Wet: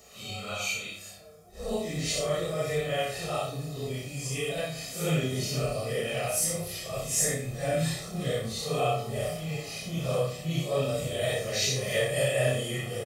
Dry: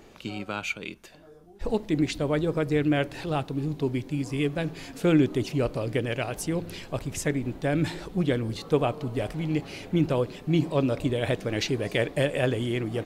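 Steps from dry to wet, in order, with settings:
random phases in long frames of 200 ms
high-pass filter 48 Hz
bass and treble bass −2 dB, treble +14 dB
notch filter 1,400 Hz, Q 22
comb filter 1.6 ms, depth 83%
in parallel at −10 dB: soft clipping −16 dBFS, distortion −18 dB
on the sum: flutter between parallel walls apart 5.3 metres, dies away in 0.35 s
convolution reverb RT60 2.4 s, pre-delay 5 ms, DRR 16.5 dB
level −8 dB

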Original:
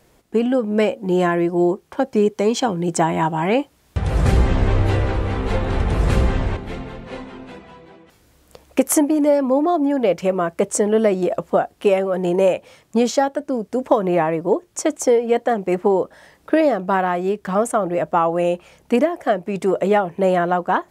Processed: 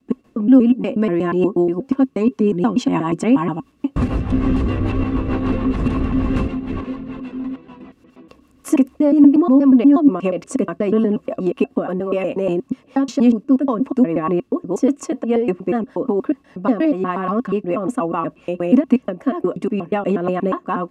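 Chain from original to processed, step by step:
slices reordered back to front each 120 ms, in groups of 3
low-pass filter 4,000 Hz 6 dB per octave
brickwall limiter −10 dBFS, peak gain reduction 7 dB
hollow resonant body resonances 260/1,100/2,700 Hz, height 16 dB, ringing for 60 ms
rotating-speaker cabinet horn 6.7 Hz
level −1.5 dB

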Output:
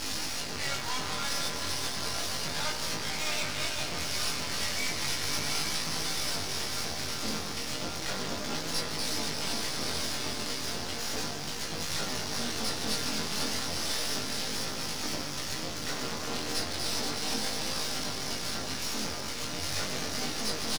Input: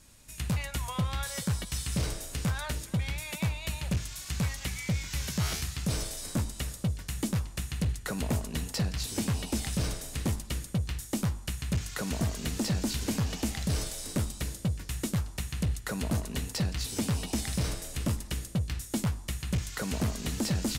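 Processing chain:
sign of each sample alone
high-pass filter 210 Hz 12 dB per octave
high shelf with overshoot 7,400 Hz −13.5 dB, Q 3
double-tracking delay 13 ms −5.5 dB
echo that builds up and dies away 117 ms, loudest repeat 5, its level −13.5 dB
half-wave rectification
on a send at −3.5 dB: convolution reverb RT60 1.5 s, pre-delay 5 ms
on the sum: chorus effect 0.34 Hz, delay 19 ms, depth 5 ms
level +4.5 dB

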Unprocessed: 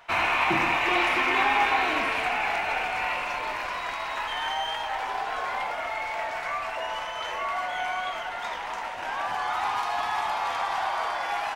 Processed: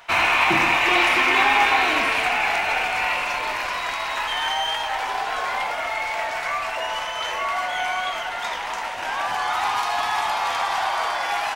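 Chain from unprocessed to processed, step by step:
high-shelf EQ 2,700 Hz +7 dB
level +3.5 dB

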